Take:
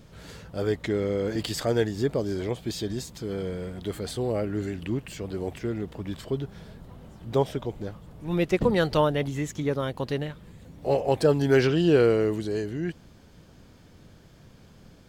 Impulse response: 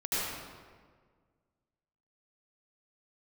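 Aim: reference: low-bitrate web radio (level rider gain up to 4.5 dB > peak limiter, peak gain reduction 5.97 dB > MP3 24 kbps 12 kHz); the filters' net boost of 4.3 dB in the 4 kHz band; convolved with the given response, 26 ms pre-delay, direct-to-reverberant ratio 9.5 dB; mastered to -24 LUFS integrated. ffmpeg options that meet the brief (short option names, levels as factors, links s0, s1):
-filter_complex "[0:a]equalizer=f=4000:t=o:g=5.5,asplit=2[s0][s1];[1:a]atrim=start_sample=2205,adelay=26[s2];[s1][s2]afir=irnorm=-1:irlink=0,volume=0.126[s3];[s0][s3]amix=inputs=2:normalize=0,dynaudnorm=m=1.68,alimiter=limit=0.188:level=0:latency=1,volume=1.68" -ar 12000 -c:a libmp3lame -b:a 24k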